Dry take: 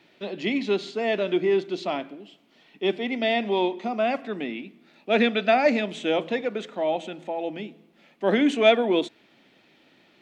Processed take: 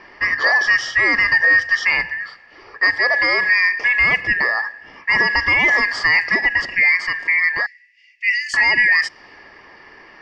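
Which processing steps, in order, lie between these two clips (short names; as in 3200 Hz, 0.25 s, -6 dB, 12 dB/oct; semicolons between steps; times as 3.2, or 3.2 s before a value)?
four-band scrambler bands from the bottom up 2143; low-pass opened by the level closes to 2800 Hz, open at -17 dBFS; in parallel at +2 dB: compressor, threshold -34 dBFS, peak gain reduction 20.5 dB; 7.66–8.54 on the sum: rippled Chebyshev high-pass 1900 Hz, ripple 9 dB; limiter -16 dBFS, peak gain reduction 12.5 dB; gain +9 dB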